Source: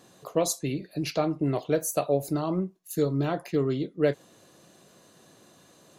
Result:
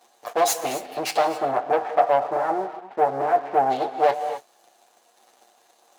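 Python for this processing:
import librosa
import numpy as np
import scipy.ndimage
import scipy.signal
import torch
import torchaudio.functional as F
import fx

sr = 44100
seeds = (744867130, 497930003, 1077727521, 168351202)

y = fx.lower_of_two(x, sr, delay_ms=8.5)
y = fx.lowpass(y, sr, hz=1900.0, slope=24, at=(1.36, 3.69), fade=0.02)
y = fx.rev_gated(y, sr, seeds[0], gate_ms=290, shape='rising', drr_db=11.5)
y = fx.leveller(y, sr, passes=2)
y = scipy.signal.sosfilt(scipy.signal.butter(2, 470.0, 'highpass', fs=sr, output='sos'), y)
y = fx.peak_eq(y, sr, hz=760.0, db=14.0, octaves=0.33)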